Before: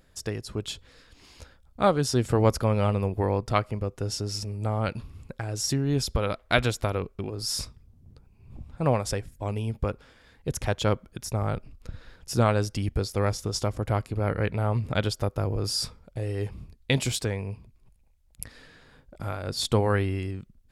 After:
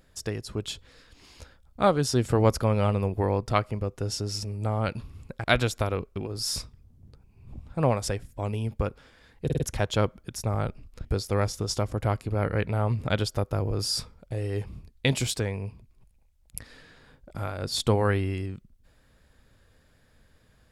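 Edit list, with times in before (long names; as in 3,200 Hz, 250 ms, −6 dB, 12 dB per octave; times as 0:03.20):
0:05.44–0:06.47: remove
0:10.48: stutter 0.05 s, 4 plays
0:11.93–0:12.90: remove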